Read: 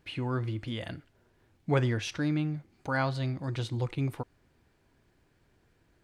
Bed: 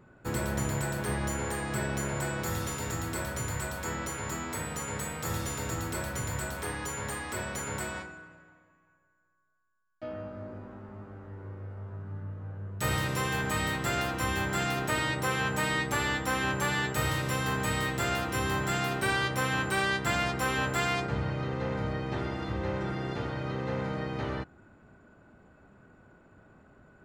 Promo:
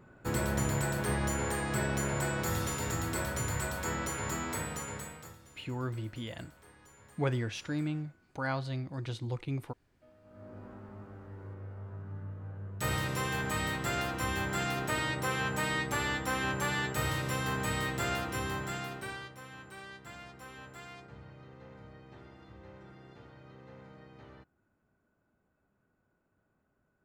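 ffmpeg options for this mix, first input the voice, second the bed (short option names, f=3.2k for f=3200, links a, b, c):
-filter_complex "[0:a]adelay=5500,volume=-4.5dB[a];[1:a]volume=20dB,afade=t=out:st=4.51:d=0.85:silence=0.0707946,afade=t=in:st=10.23:d=0.44:silence=0.1,afade=t=out:st=18.12:d=1.23:silence=0.149624[b];[a][b]amix=inputs=2:normalize=0"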